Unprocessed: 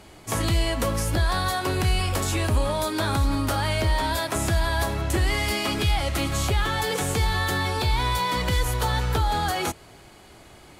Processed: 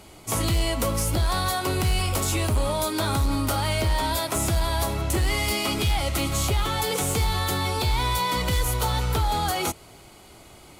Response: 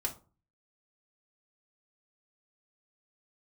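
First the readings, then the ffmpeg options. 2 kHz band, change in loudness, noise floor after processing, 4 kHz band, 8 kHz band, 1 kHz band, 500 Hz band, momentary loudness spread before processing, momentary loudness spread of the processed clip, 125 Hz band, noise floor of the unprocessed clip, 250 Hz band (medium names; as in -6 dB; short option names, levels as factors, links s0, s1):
-2.5 dB, 0.0 dB, -48 dBFS, +0.5 dB, +3.0 dB, -0.5 dB, -0.5 dB, 2 LU, 1 LU, -0.5 dB, -49 dBFS, -0.5 dB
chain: -af "highshelf=f=8300:g=7,bandreject=f=1700:w=6.5,volume=7.5,asoftclip=hard,volume=0.133"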